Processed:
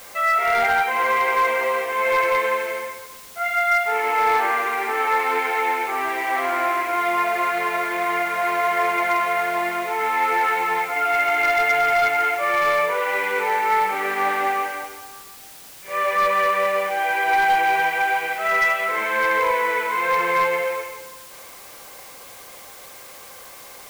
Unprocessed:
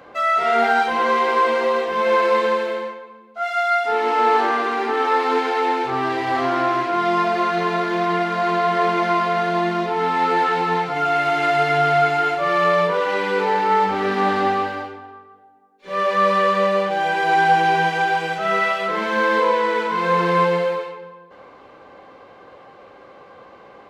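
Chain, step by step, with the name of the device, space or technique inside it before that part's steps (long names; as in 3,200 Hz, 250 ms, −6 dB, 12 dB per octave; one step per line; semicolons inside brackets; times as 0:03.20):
drive-through speaker (band-pass filter 490–2,900 Hz; parametric band 2,200 Hz +11 dB 0.37 octaves; hard clipping −11.5 dBFS, distortion −23 dB; white noise bed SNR 21 dB)
level −1.5 dB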